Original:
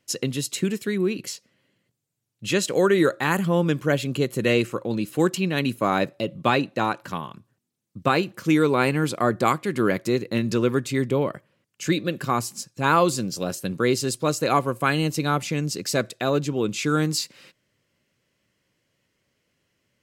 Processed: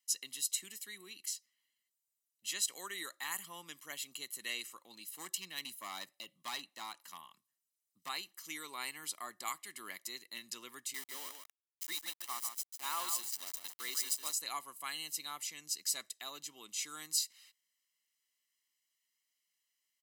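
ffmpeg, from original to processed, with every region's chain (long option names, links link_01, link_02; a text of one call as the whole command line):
ffmpeg -i in.wav -filter_complex "[0:a]asettb=1/sr,asplit=3[link_01][link_02][link_03];[link_01]atrim=end=5.094[link_04];[link_02]atrim=start=5.09:end=8.09,asetpts=PTS-STARTPTS,afade=type=in:duration=0.004:curve=qsin,afade=type=out:start_time=2.996:duration=0.004:curve=qsin,equalizer=frequency=65:width=0.36:gain=5.5,volume=15.5dB,asoftclip=hard,volume=-15.5dB[link_05];[link_03]atrim=start=8.086[link_06];[link_04][link_05]acrossfade=duration=0.004:curve1=hsin:curve2=qsin[link_07];[link_07][link_06]acrossfade=duration=0.004:curve1=qsin:curve2=hsin,asettb=1/sr,asplit=3[link_08][link_09][link_10];[link_08]atrim=end=10.944[link_11];[link_09]atrim=start=10.94:end=14.33,asetpts=PTS-STARTPTS,afade=type=in:duration=0.004:curve=qsin,afade=type=out:start_time=3.386:duration=0.004:curve=qsin,highpass=220,aeval=exprs='val(0)*gte(abs(val(0)),0.0422)':channel_layout=same,aecho=1:1:146:0.422,atrim=end_sample=149499[link_12];[link_10]atrim=start=14.326[link_13];[link_11][link_12]acrossfade=duration=0.004:curve1=hsin:curve2=qsin[link_14];[link_14][link_13]acrossfade=duration=0.004:curve1=qsin:curve2=hsin,highpass=210,aderivative,aecho=1:1:1:0.61,volume=-6dB" out.wav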